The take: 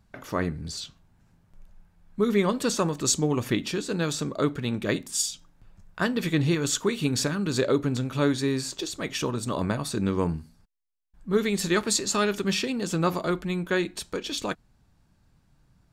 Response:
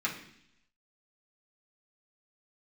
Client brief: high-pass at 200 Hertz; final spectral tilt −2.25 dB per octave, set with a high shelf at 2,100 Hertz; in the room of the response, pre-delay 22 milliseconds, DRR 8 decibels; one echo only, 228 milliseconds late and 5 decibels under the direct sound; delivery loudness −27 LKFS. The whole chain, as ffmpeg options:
-filter_complex "[0:a]highpass=200,highshelf=frequency=2100:gain=8,aecho=1:1:228:0.562,asplit=2[link_01][link_02];[1:a]atrim=start_sample=2205,adelay=22[link_03];[link_02][link_03]afir=irnorm=-1:irlink=0,volume=-15dB[link_04];[link_01][link_04]amix=inputs=2:normalize=0,volume=-4dB"

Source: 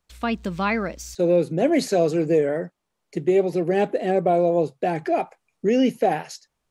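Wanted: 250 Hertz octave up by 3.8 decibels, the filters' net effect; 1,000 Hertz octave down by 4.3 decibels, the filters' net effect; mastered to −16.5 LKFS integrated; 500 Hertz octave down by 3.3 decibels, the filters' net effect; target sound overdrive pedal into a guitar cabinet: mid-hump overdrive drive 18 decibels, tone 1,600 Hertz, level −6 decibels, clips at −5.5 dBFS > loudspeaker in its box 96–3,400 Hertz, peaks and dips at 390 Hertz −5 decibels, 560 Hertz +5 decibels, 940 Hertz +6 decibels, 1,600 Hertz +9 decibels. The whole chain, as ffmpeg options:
ffmpeg -i in.wav -filter_complex "[0:a]equalizer=frequency=250:width_type=o:gain=8.5,equalizer=frequency=500:width_type=o:gain=-5.5,equalizer=frequency=1000:width_type=o:gain=-9,asplit=2[link_01][link_02];[link_02]highpass=frequency=720:poles=1,volume=18dB,asoftclip=type=tanh:threshold=-5.5dB[link_03];[link_01][link_03]amix=inputs=2:normalize=0,lowpass=frequency=1600:poles=1,volume=-6dB,highpass=96,equalizer=frequency=390:width_type=q:width=4:gain=-5,equalizer=frequency=560:width_type=q:width=4:gain=5,equalizer=frequency=940:width_type=q:width=4:gain=6,equalizer=frequency=1600:width_type=q:width=4:gain=9,lowpass=frequency=3400:width=0.5412,lowpass=frequency=3400:width=1.3066,volume=2.5dB" out.wav

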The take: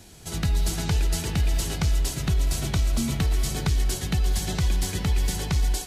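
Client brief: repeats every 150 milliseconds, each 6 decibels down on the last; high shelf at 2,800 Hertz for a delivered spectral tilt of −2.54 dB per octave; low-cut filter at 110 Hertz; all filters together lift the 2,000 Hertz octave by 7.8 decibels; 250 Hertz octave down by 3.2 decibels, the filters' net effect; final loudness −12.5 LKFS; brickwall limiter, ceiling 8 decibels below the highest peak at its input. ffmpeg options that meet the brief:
ffmpeg -i in.wav -af "highpass=110,equalizer=frequency=250:width_type=o:gain=-4.5,equalizer=frequency=2000:width_type=o:gain=6.5,highshelf=frequency=2800:gain=7.5,alimiter=limit=-17dB:level=0:latency=1,aecho=1:1:150|300|450|600|750|900:0.501|0.251|0.125|0.0626|0.0313|0.0157,volume=13.5dB" out.wav

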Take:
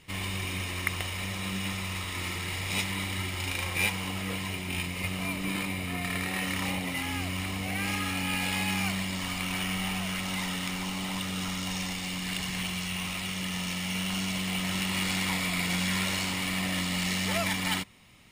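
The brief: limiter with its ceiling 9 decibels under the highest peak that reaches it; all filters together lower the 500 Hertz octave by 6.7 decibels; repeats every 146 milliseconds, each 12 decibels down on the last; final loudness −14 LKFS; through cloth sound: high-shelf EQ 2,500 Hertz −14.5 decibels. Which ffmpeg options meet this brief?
ffmpeg -i in.wav -af "equalizer=frequency=500:width_type=o:gain=-8.5,alimiter=limit=-21dB:level=0:latency=1,highshelf=frequency=2500:gain=-14.5,aecho=1:1:146|292|438:0.251|0.0628|0.0157,volume=21.5dB" out.wav

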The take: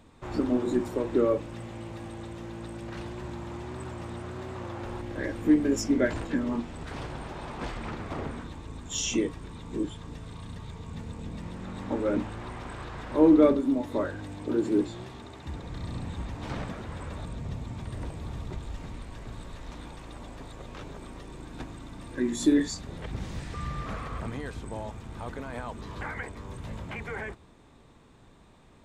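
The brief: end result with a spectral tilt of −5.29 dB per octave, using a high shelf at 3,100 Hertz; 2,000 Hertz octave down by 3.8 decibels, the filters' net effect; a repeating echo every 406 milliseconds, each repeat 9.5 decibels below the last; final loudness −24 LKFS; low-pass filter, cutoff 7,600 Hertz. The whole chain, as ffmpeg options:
ffmpeg -i in.wav -af "lowpass=7600,equalizer=frequency=2000:width_type=o:gain=-7.5,highshelf=frequency=3100:gain=7.5,aecho=1:1:406|812|1218|1624:0.335|0.111|0.0365|0.012,volume=6.5dB" out.wav

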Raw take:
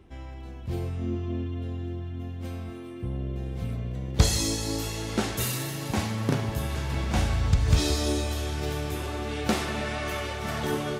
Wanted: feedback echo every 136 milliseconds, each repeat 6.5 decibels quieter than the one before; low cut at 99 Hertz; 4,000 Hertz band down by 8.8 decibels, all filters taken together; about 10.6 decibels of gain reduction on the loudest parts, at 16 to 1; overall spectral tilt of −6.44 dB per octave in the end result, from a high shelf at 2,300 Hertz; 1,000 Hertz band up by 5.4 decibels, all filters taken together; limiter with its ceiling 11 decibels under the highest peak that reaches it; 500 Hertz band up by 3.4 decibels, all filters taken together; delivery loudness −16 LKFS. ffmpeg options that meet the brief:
ffmpeg -i in.wav -af "highpass=99,equalizer=frequency=500:width_type=o:gain=3,equalizer=frequency=1000:width_type=o:gain=7.5,highshelf=frequency=2300:gain=-7,equalizer=frequency=4000:width_type=o:gain=-5,acompressor=threshold=-29dB:ratio=16,alimiter=level_in=3.5dB:limit=-24dB:level=0:latency=1,volume=-3.5dB,aecho=1:1:136|272|408|544|680|816:0.473|0.222|0.105|0.0491|0.0231|0.0109,volume=19.5dB" out.wav

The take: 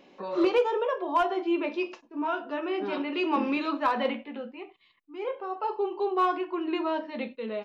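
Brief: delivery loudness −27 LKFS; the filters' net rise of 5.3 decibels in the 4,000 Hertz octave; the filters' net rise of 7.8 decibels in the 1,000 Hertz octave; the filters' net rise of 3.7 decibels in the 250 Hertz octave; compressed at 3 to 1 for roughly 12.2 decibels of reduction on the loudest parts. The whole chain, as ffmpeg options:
ffmpeg -i in.wav -af "equalizer=frequency=250:width_type=o:gain=4.5,equalizer=frequency=1000:width_type=o:gain=8.5,equalizer=frequency=4000:width_type=o:gain=7,acompressor=threshold=-30dB:ratio=3,volume=5dB" out.wav

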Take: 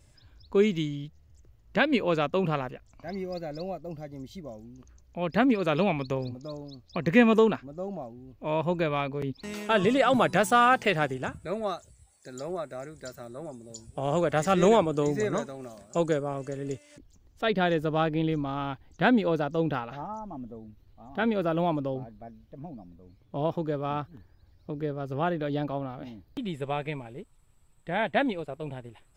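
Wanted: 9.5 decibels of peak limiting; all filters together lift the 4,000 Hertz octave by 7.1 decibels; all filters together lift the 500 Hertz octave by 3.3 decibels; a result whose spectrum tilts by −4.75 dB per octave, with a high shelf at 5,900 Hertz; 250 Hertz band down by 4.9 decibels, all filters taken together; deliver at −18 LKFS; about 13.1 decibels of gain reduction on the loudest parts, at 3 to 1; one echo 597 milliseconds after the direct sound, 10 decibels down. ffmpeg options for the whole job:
ffmpeg -i in.wav -af "equalizer=frequency=250:width_type=o:gain=-8.5,equalizer=frequency=500:width_type=o:gain=6,equalizer=frequency=4000:width_type=o:gain=7,highshelf=frequency=5900:gain=7,acompressor=threshold=-32dB:ratio=3,alimiter=level_in=2dB:limit=-24dB:level=0:latency=1,volume=-2dB,aecho=1:1:597:0.316,volume=19.5dB" out.wav

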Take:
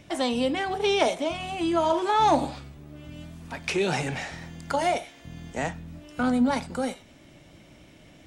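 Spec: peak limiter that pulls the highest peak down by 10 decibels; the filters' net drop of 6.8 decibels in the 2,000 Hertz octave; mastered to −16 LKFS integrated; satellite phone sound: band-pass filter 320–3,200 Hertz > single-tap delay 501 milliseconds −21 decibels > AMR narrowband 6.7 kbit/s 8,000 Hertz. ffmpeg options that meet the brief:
ffmpeg -i in.wav -af "equalizer=frequency=2000:width_type=o:gain=-8,alimiter=limit=-20.5dB:level=0:latency=1,highpass=320,lowpass=3200,aecho=1:1:501:0.0891,volume=17dB" -ar 8000 -c:a libopencore_amrnb -b:a 6700 out.amr

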